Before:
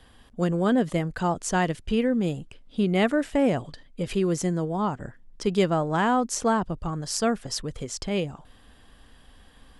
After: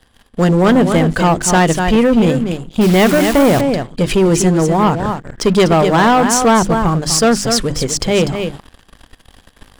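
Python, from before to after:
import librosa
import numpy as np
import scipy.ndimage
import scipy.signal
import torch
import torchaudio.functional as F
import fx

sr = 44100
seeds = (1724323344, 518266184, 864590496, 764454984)

y = fx.hum_notches(x, sr, base_hz=50, count=7)
y = y + 10.0 ** (-9.0 / 20.0) * np.pad(y, (int(246 * sr / 1000.0), 0))[:len(y)]
y = fx.quant_dither(y, sr, seeds[0], bits=6, dither='none', at=(2.81, 3.61))
y = fx.leveller(y, sr, passes=3)
y = y * 10.0 ** (4.5 / 20.0)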